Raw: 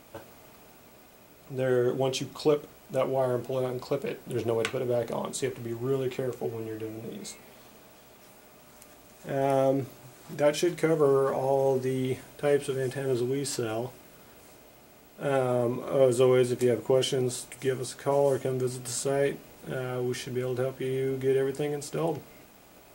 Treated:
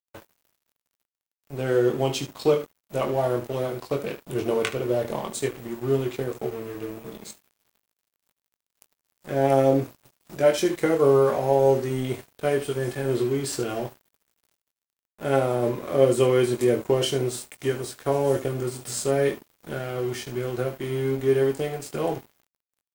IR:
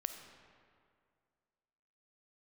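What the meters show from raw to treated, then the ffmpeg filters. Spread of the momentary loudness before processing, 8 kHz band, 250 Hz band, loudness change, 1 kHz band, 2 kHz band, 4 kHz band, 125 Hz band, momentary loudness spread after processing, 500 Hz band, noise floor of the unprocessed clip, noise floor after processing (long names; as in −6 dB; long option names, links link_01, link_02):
11 LU, +2.0 dB, +3.5 dB, +3.5 dB, +4.0 dB, +3.5 dB, +3.0 dB, +4.0 dB, 13 LU, +3.5 dB, −54 dBFS, below −85 dBFS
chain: -af "aecho=1:1:22|74:0.531|0.251,aeval=exprs='sgn(val(0))*max(abs(val(0))-0.00708,0)':channel_layout=same,volume=3dB"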